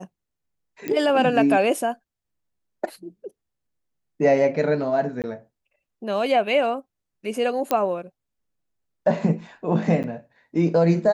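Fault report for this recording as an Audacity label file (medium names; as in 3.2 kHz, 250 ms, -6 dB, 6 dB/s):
0.880000	0.880000	pop -14 dBFS
5.220000	5.240000	dropout 18 ms
7.710000	7.710000	pop -8 dBFS
10.030000	10.040000	dropout 8.7 ms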